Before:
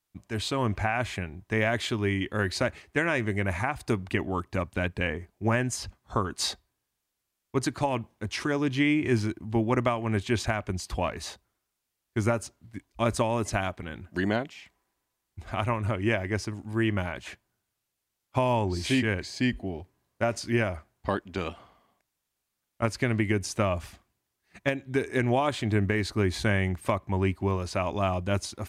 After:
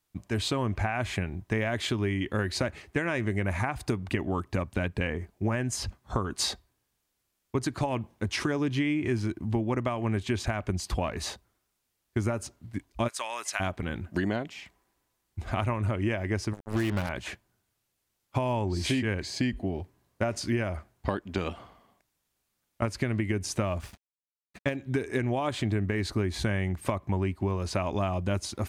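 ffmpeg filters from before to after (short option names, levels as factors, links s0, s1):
-filter_complex "[0:a]asplit=3[s0][s1][s2];[s0]afade=t=out:st=13.07:d=0.02[s3];[s1]highpass=1400,afade=t=in:st=13.07:d=0.02,afade=t=out:st=13.59:d=0.02[s4];[s2]afade=t=in:st=13.59:d=0.02[s5];[s3][s4][s5]amix=inputs=3:normalize=0,asettb=1/sr,asplit=3[s6][s7][s8];[s6]atrim=end=16.534[s9];[s7]atrim=start=16.53:end=17.09,asetpts=PTS-STARTPTS,afade=t=in:d=0.004:c=qsin,afade=t=out:st=0.556:d=0.004:c=qsin,acrusher=bits=4:mix=0:aa=0.5[s10];[s8]atrim=start=17.086[s11];[s9][s10]acrossfade=d=0.004:c1=hsin:c2=qsin[s12];[s12][s11]acrossfade=d=0.004:c1=qsin:c2=hsin,asettb=1/sr,asplit=3[s13][s14][s15];[s13]atrim=end=23.654[s16];[s14]atrim=start=23.65:end=24.76,asetpts=PTS-STARTPTS,afade=t=in:d=0.004:c=qsin,afade=t=out:st=1.106:d=0.004:c=qsin,aeval=exprs='sgn(val(0))*max(abs(val(0))-0.00266,0)':c=same[s17];[s15]atrim=start=24.756[s18];[s16][s17]acrossfade=d=0.004:c1=hsin:c2=qsin[s19];[s19][s18]acrossfade=d=0.004:c1=qsin:c2=hsin,lowshelf=f=470:g=3.5,acompressor=threshold=0.0398:ratio=6,volume=1.41"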